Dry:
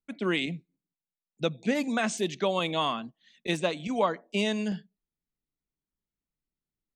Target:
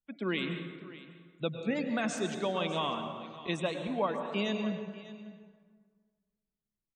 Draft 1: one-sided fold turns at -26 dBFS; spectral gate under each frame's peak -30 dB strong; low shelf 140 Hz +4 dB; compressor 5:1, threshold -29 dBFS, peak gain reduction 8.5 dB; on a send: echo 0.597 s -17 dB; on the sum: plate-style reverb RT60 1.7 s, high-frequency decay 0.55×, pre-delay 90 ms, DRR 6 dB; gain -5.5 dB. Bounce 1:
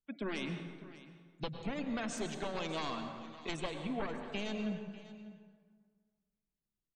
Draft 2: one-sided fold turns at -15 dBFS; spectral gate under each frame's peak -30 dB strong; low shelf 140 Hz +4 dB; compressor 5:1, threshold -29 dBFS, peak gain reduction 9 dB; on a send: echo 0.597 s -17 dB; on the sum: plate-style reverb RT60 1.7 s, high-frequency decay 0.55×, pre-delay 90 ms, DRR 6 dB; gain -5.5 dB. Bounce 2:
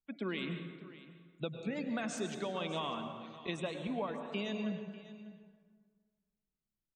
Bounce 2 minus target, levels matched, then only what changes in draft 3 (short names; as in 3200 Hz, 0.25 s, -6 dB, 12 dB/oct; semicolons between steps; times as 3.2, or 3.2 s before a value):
compressor: peak gain reduction +9 dB
remove: compressor 5:1, threshold -29 dBFS, peak gain reduction 9 dB